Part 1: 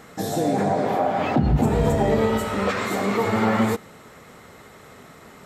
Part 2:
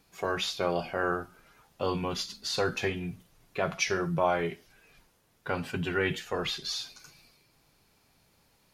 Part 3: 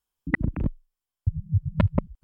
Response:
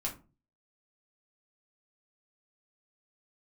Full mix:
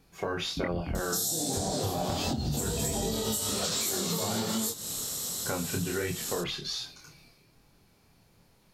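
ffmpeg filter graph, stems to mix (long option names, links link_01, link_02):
-filter_complex "[0:a]aexciter=amount=14.7:drive=7.6:freq=3400,adelay=950,volume=-2dB,asplit=2[link_01][link_02];[link_02]volume=-13.5dB[link_03];[1:a]volume=1.5dB,asplit=2[link_04][link_05];[link_05]volume=-12.5dB[link_06];[2:a]acompressor=threshold=-21dB:ratio=6,adelay=300,volume=2dB[link_07];[link_01][link_04]amix=inputs=2:normalize=0,lowshelf=frequency=500:gain=8,alimiter=limit=-9dB:level=0:latency=1:release=136,volume=0dB[link_08];[3:a]atrim=start_sample=2205[link_09];[link_03][link_06]amix=inputs=2:normalize=0[link_10];[link_10][link_09]afir=irnorm=-1:irlink=0[link_11];[link_07][link_08][link_11]amix=inputs=3:normalize=0,flanger=delay=22.5:depth=7:speed=1.3,acompressor=threshold=-28dB:ratio=6"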